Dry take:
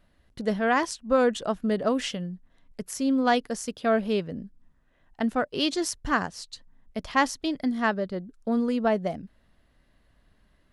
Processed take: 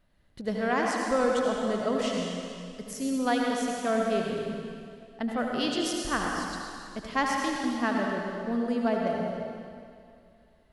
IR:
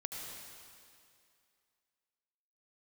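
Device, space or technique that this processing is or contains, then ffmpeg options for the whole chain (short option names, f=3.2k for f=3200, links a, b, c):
stairwell: -filter_complex "[1:a]atrim=start_sample=2205[a];[0:a][a]afir=irnorm=-1:irlink=0,volume=-1.5dB"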